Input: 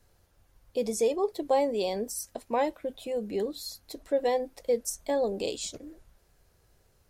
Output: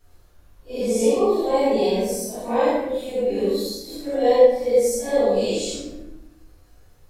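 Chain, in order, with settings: phase randomisation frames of 200 ms; simulated room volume 250 m³, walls mixed, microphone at 3.4 m; trim -2 dB

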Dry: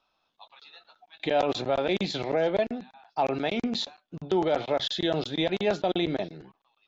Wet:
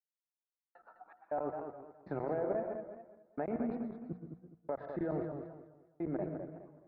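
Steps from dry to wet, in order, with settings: Doppler pass-by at 3.04 s, 6 m/s, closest 5.7 m; recorder AGC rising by 7.5 dB/s; inverse Chebyshev low-pass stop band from 3 kHz, stop band 40 dB; compression, threshold -34 dBFS, peak gain reduction 12.5 dB; trance gate "....xx.x...xxx" 80 bpm -60 dB; hum notches 60/120/180 Hz; reverberation RT60 0.35 s, pre-delay 107 ms, DRR 8.5 dB; modulated delay 209 ms, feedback 31%, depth 120 cents, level -7 dB; trim +1.5 dB

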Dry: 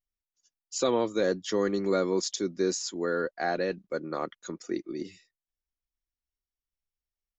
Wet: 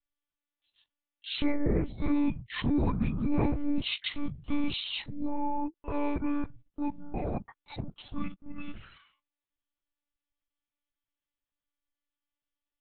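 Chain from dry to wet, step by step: speed mistake 78 rpm record played at 45 rpm; monotone LPC vocoder at 8 kHz 290 Hz

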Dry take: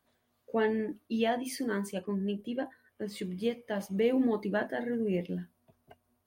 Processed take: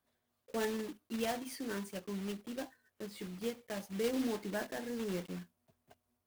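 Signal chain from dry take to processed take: block-companded coder 3-bit; trim -7.5 dB

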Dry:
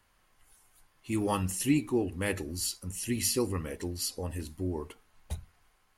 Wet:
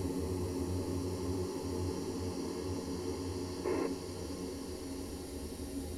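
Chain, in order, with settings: repeats whose band climbs or falls 405 ms, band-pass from 240 Hz, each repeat 1.4 oct, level -4.5 dB; Paulstretch 12×, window 1.00 s, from 4.65 s; time-frequency box 3.65–3.87 s, 280–2700 Hz +10 dB; trim -1.5 dB

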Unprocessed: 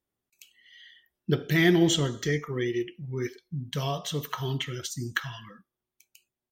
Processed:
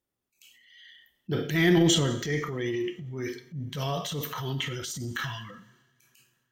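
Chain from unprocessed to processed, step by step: two-slope reverb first 0.56 s, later 3.4 s, from -26 dB, DRR 10 dB; transient shaper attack -8 dB, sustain +6 dB

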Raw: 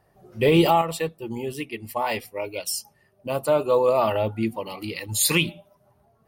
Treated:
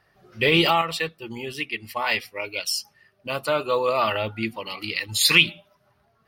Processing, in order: high-order bell 2.6 kHz +11.5 dB 2.5 oct; trim -4 dB

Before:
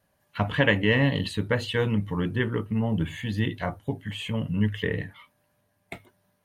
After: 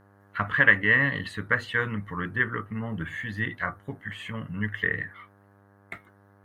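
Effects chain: high-order bell 1.5 kHz +14.5 dB 1.1 oct; mains buzz 100 Hz, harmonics 17, -51 dBFS -4 dB/octave; trim -7 dB

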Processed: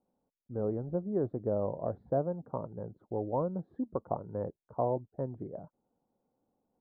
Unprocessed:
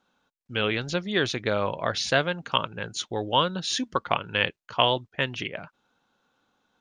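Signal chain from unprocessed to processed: inverse Chebyshev low-pass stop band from 2.5 kHz, stop band 60 dB; trim -4 dB

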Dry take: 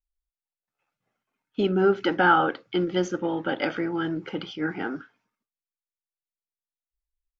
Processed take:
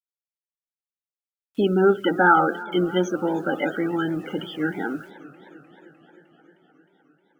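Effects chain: loudest bins only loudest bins 32; bit crusher 10-bit; modulated delay 307 ms, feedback 72%, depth 131 cents, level -19.5 dB; trim +3 dB

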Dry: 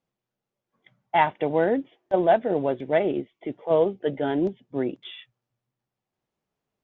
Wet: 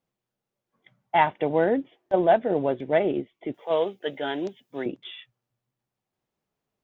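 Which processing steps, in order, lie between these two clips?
3.54–4.86 s: tilt EQ +4 dB/octave

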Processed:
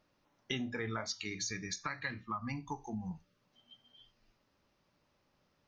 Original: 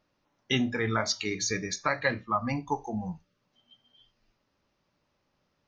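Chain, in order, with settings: 1.06–3.11 s: peaking EQ 560 Hz -13 dB 1 oct; compression 3:1, threshold -38 dBFS, peak gain reduction 12 dB

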